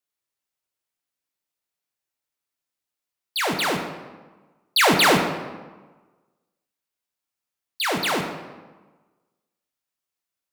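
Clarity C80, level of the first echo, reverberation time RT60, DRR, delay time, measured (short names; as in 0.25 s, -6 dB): 7.5 dB, none, 1.3 s, 2.5 dB, none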